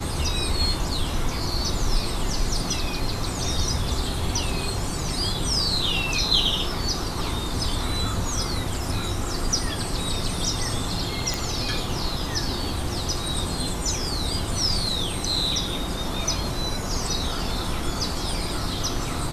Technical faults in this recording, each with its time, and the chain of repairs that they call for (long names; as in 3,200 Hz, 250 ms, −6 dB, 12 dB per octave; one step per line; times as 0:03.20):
0:11.34: click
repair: click removal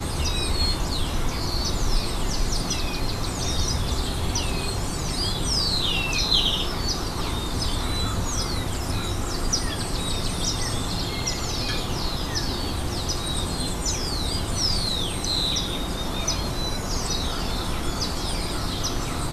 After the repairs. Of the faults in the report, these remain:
none of them is left